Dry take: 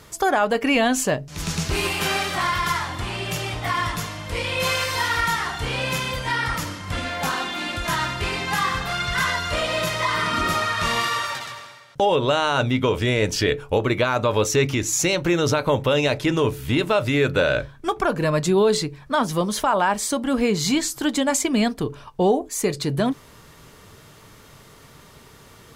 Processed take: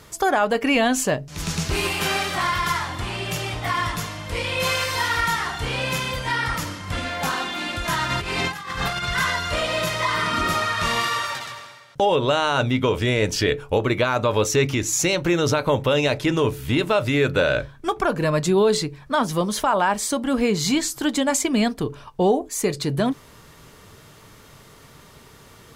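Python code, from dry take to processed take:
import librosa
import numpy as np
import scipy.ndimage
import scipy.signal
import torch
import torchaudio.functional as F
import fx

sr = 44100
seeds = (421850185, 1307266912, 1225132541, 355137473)

y = fx.over_compress(x, sr, threshold_db=-28.0, ratio=-0.5, at=(8.09, 9.04), fade=0.02)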